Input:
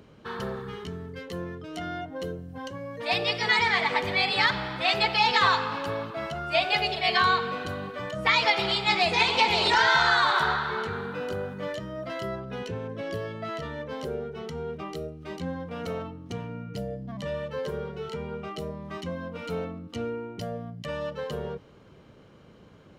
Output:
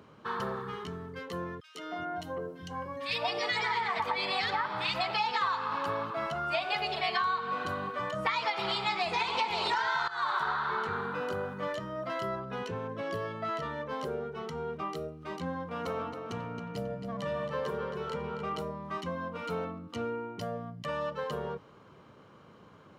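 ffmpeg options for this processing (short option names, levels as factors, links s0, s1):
-filter_complex "[0:a]asettb=1/sr,asplit=3[s0][s1][s2];[s0]atrim=end=1.604[s3];[s1]atrim=start=1.6:end=5.11,asetpts=PTS-STARTPTS,afade=t=in:d=0.004:c=qsin,afade=t=out:st=3.506:d=0.004:c=qsin,acrossover=split=210|1800[s4][s5][s6];[s5]adelay=150[s7];[s4]adelay=380[s8];[s8][s7][s6]amix=inputs=3:normalize=0,atrim=end_sample=154791[s9];[s2]atrim=start=5.106[s10];[s3][s9]acrossfade=d=0.004:c1=hsin:c2=qsin[s11];[s11][s10]acrossfade=d=0.004:c1=qsin:c2=hsin,asettb=1/sr,asplit=3[s12][s13][s14];[s12]atrim=end=15.584[s15];[s13]atrim=start=15.58:end=18.62,asetpts=PTS-STARTPTS,afade=t=in:d=0.004:c=qsin,afade=t=out:st=3.036:d=0.004:c=qsin,asplit=2[s16][s17];[s17]adelay=271,lowpass=f=4800:p=1,volume=0.473,asplit=2[s18][s19];[s19]adelay=271,lowpass=f=4800:p=1,volume=0.42,asplit=2[s20][s21];[s21]adelay=271,lowpass=f=4800:p=1,volume=0.42,asplit=2[s22][s23];[s23]adelay=271,lowpass=f=4800:p=1,volume=0.42,asplit=2[s24][s25];[s25]adelay=271,lowpass=f=4800:p=1,volume=0.42[s26];[s16][s18][s20][s22][s24][s26]amix=inputs=6:normalize=0,atrim=end_sample=134064[s27];[s14]atrim=start=18.616[s28];[s15][s27]acrossfade=d=0.004:c1=hsin:c2=qsin[s29];[s29][s28]acrossfade=d=0.004:c1=qsin:c2=hsin,asplit=2[s30][s31];[s30]atrim=end=10.08,asetpts=PTS-STARTPTS,afade=t=out:st=10.076:d=0.004:c=hsin:silence=0.133352[s32];[s31]atrim=start=10.08,asetpts=PTS-STARTPTS,afade=t=in:d=0.42:silence=0.133352[s33];[s32][s33]concat=n=2:v=0:a=1,highpass=89,equalizer=f=1100:w=1.6:g=9,acompressor=threshold=0.0631:ratio=6,volume=0.668"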